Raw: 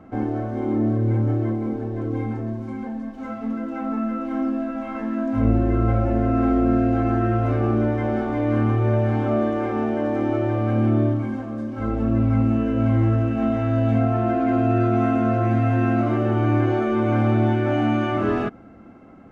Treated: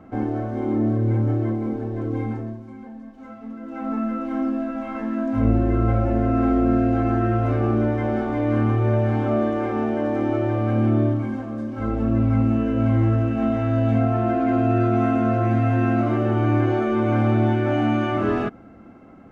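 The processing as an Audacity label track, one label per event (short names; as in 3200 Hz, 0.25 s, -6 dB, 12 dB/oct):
2.320000	3.910000	dip -8.5 dB, fades 0.31 s linear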